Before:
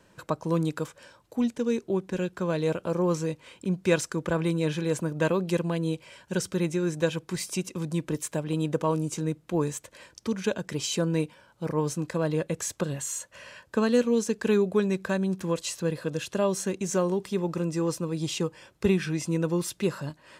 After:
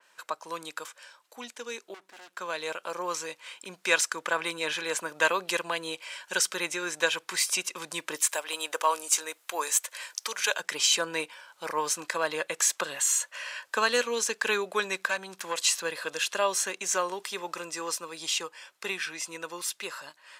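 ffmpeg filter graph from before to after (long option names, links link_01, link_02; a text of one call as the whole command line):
ffmpeg -i in.wav -filter_complex "[0:a]asettb=1/sr,asplit=3[link_01][link_02][link_03];[link_01]atrim=end=1.944[link_04];[link_02]atrim=start=1.94:end=2.37,asetpts=PTS-STARTPTS,afade=type=in:duration=0.004:curve=qsin,afade=type=out:start_time=0.426:duration=0.004:curve=qsin,aeval=exprs='if(lt(val(0),0),0.251*val(0),val(0))':channel_layout=same,equalizer=frequency=280:width_type=o:width=0.65:gain=8,aeval=exprs='(tanh(100*val(0)+0.3)-tanh(0.3))/100':channel_layout=same[link_05];[link_03]atrim=start=2.366[link_06];[link_04][link_05]acrossfade=duration=0.004:curve1=hsin:curve2=qsin[link_07];[link_07][link_06]acrossfade=duration=0.004:curve1=qsin:curve2=hsin,asettb=1/sr,asplit=3[link_08][link_09][link_10];[link_08]atrim=end=8.294[link_11];[link_09]atrim=start=8.29:end=10.6,asetpts=PTS-STARTPTS,afade=type=in:duration=0.004:curve=qsin,afade=type=out:start_time=2.306:duration=0.004:curve=qsin,highpass=470,highshelf=frequency=8200:gain=9.5[link_12];[link_10]atrim=start=10.596[link_13];[link_11][link_12]acrossfade=duration=0.004:curve1=hsin:curve2=qsin[link_14];[link_14][link_13]acrossfade=duration=0.004:curve1=qsin:curve2=hsin,asettb=1/sr,asplit=3[link_15][link_16][link_17];[link_15]atrim=end=15.074[link_18];[link_16]atrim=start=15.07:end=15.57,asetpts=PTS-STARTPTS,afade=type=in:duration=0.004:curve=qsin,afade=type=out:start_time=0.496:duration=0.004:curve=qsin,highpass=frequency=110:width=0.5412,highpass=frequency=110:width=1.3066,aeval=exprs='(tanh(8.91*val(0)+0.55)-tanh(0.55))/8.91':channel_layout=same[link_19];[link_17]atrim=start=15.566[link_20];[link_18][link_19]acrossfade=duration=0.004:curve1=hsin:curve2=qsin[link_21];[link_21][link_20]acrossfade=duration=0.004:curve1=qsin:curve2=hsin,highpass=1100,dynaudnorm=framelen=820:gausssize=9:maxgain=7dB,adynamicequalizer=threshold=0.00891:dfrequency=3600:dqfactor=0.7:tfrequency=3600:tqfactor=0.7:attack=5:release=100:ratio=0.375:range=2:mode=cutabove:tftype=highshelf,volume=3dB" out.wav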